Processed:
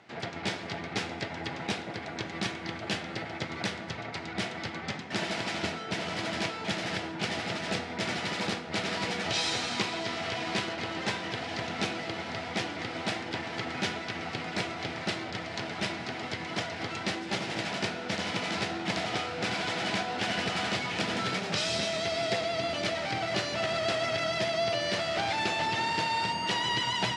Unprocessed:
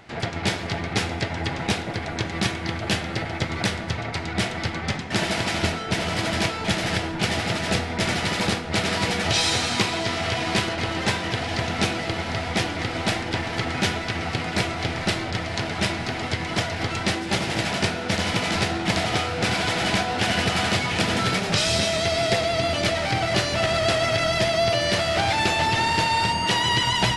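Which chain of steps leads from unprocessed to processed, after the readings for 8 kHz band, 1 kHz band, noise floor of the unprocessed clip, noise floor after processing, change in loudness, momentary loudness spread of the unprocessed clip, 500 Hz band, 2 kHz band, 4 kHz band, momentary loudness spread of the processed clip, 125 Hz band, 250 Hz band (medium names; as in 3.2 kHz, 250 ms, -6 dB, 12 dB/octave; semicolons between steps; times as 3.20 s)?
-10.0 dB, -7.5 dB, -31 dBFS, -40 dBFS, -8.0 dB, 6 LU, -7.5 dB, -7.5 dB, -8.0 dB, 7 LU, -12.5 dB, -8.5 dB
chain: band-pass 150–7200 Hz; trim -7.5 dB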